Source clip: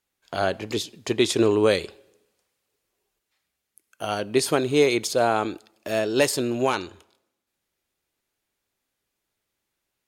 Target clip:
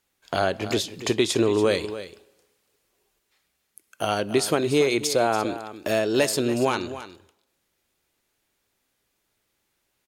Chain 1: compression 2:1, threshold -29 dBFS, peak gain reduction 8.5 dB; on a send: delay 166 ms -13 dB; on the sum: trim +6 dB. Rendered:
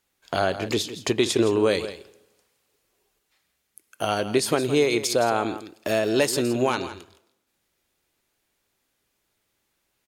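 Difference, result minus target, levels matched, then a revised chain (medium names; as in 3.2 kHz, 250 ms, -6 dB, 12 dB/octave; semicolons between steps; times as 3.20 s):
echo 119 ms early
compression 2:1, threshold -29 dBFS, peak gain reduction 8.5 dB; on a send: delay 285 ms -13 dB; on the sum: trim +6 dB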